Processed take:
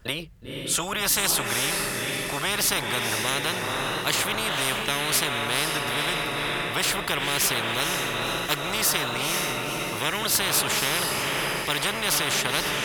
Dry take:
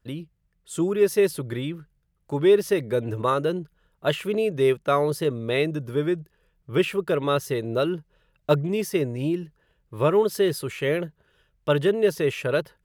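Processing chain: high shelf 11000 Hz -3.5 dB; on a send: diffused feedback echo 0.495 s, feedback 49%, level -8.5 dB; on the sum: spectral compressor 10:1

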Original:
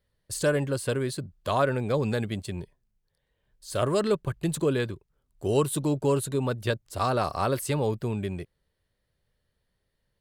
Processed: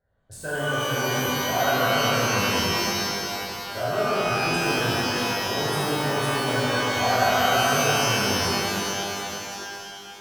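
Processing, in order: Wiener smoothing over 15 samples; reverse; compressor 6:1, threshold -33 dBFS, peak gain reduction 14 dB; reverse; small resonant body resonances 710/1500 Hz, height 17 dB, ringing for 30 ms; shimmer reverb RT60 3 s, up +12 st, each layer -2 dB, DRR -10.5 dB; gain -4.5 dB

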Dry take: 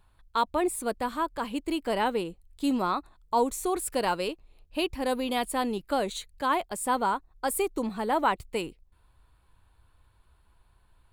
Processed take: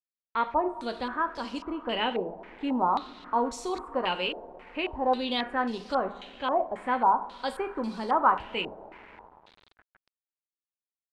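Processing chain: two-slope reverb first 0.39 s, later 5 s, from -18 dB, DRR 6 dB; sample gate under -46 dBFS; stepped low-pass 3.7 Hz 670–5200 Hz; gain -4.5 dB

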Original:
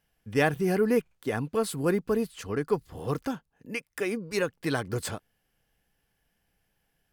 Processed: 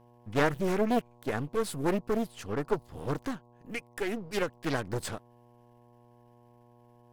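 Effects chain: half-wave gain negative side -7 dB; buzz 120 Hz, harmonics 9, -59 dBFS -3 dB/oct; Doppler distortion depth 0.52 ms

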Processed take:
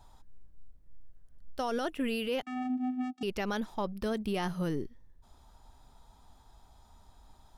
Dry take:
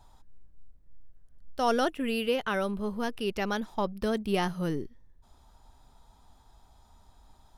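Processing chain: limiter -24 dBFS, peak gain reduction 10 dB; 2.42–3.23 vocoder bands 4, square 253 Hz

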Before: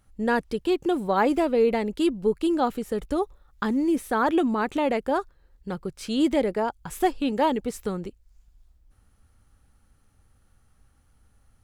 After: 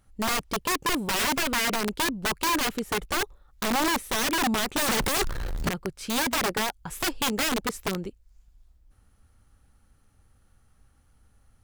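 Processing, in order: 4.78–5.69 power-law curve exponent 0.35; wrapped overs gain 20.5 dB

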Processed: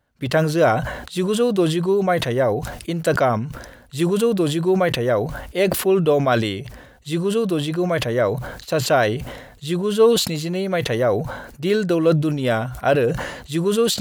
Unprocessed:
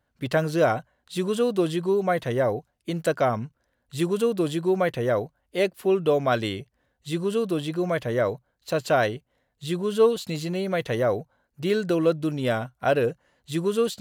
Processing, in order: sustainer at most 59 dB/s; gain +4 dB

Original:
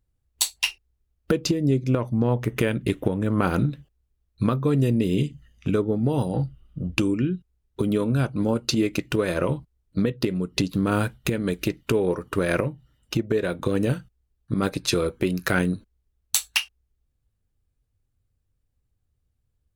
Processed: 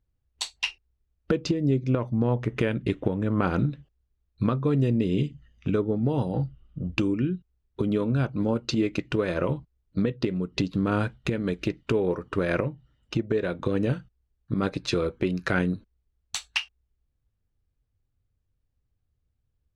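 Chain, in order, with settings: air absorption 110 m; gain -2 dB

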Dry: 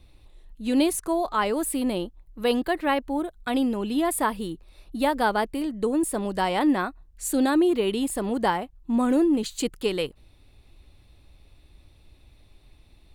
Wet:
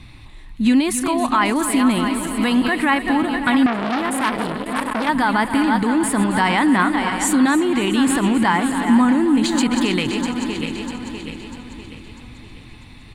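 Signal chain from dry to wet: regenerating reverse delay 0.323 s, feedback 65%, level -11.5 dB; limiter -21 dBFS, peak gain reduction 11.5 dB; high shelf 7900 Hz -6 dB; on a send: feedback echo 0.272 s, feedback 58%, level -13 dB; on the sum: compressor 1.5:1, threshold -34 dBFS, peak gain reduction 4 dB; graphic EQ 125/250/500/1000/2000/4000/8000 Hz +11/+9/-7/+9/+12/+4/+8 dB; 3.66–5.09 core saturation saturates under 1900 Hz; gain +7.5 dB

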